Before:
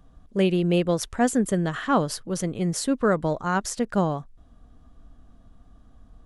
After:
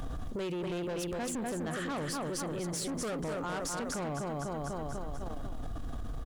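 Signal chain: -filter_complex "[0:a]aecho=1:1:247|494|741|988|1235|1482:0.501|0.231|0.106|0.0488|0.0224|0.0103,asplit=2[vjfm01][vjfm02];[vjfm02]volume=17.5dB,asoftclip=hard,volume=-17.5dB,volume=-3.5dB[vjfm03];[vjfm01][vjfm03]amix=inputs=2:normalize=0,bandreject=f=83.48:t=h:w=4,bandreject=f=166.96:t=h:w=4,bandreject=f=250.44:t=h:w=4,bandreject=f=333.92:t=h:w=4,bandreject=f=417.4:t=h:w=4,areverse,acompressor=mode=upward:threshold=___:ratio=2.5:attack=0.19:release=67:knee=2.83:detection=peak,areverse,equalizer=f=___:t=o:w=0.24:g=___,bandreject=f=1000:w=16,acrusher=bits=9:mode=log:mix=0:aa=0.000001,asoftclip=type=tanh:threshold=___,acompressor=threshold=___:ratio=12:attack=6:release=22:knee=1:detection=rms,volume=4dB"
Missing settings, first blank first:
-22dB, 190, -9.5, -21dB, -39dB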